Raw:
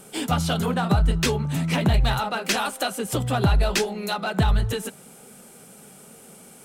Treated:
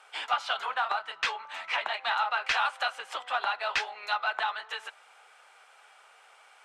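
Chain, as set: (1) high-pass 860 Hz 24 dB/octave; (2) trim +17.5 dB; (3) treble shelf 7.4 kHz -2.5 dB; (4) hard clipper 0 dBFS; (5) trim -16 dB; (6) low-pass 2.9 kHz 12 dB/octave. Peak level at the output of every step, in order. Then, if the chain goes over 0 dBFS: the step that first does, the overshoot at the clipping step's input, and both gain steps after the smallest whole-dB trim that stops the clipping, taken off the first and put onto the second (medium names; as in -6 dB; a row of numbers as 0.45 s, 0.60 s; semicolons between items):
-10.0 dBFS, +7.5 dBFS, +6.5 dBFS, 0.0 dBFS, -16.0 dBFS, -16.0 dBFS; step 2, 6.5 dB; step 2 +10.5 dB, step 5 -9 dB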